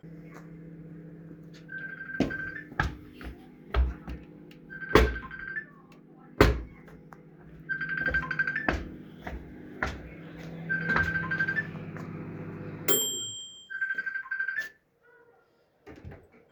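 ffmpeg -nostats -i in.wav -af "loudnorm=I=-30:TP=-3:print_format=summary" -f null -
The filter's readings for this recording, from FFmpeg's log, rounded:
Input Integrated:    -30.5 LUFS
Input True Peak:      -2.8 dBTP
Input LRA:             6.1 LU
Input Threshold:     -42.6 LUFS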